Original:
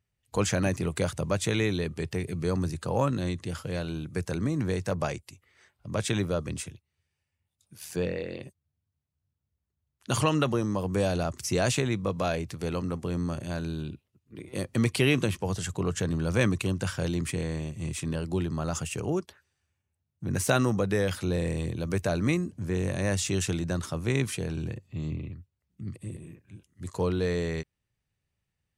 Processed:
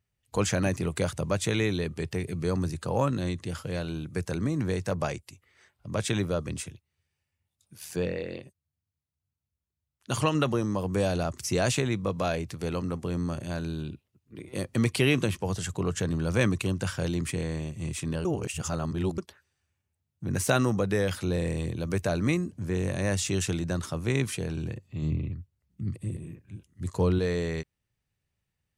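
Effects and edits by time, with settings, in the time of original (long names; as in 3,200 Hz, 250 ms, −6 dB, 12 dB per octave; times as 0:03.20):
0:08.40–0:10.35: expander for the loud parts, over −32 dBFS
0:18.25–0:19.18: reverse
0:25.02–0:27.19: low-shelf EQ 250 Hz +6.5 dB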